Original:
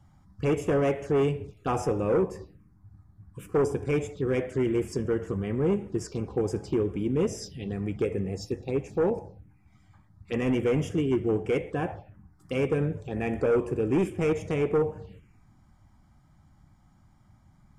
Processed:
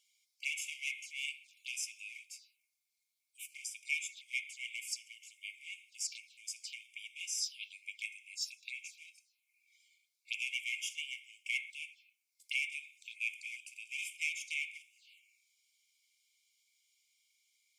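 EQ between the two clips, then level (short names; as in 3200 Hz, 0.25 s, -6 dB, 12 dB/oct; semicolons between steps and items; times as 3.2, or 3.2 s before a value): brick-wall FIR high-pass 2100 Hz; +5.0 dB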